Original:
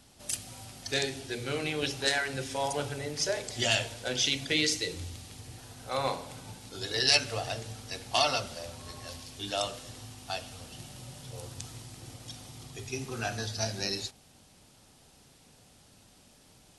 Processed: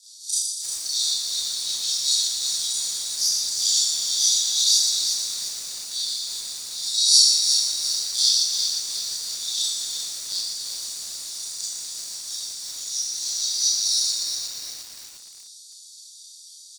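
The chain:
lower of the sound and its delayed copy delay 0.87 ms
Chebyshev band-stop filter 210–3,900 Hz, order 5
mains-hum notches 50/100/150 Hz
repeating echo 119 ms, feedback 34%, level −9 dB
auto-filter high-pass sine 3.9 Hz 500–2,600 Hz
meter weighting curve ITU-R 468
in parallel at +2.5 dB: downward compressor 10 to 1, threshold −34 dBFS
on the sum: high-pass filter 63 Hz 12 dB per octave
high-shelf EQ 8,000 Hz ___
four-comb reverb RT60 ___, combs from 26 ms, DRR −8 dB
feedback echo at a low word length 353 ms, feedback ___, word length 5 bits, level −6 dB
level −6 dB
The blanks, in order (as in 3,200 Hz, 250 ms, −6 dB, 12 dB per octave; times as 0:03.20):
−4.5 dB, 0.73 s, 55%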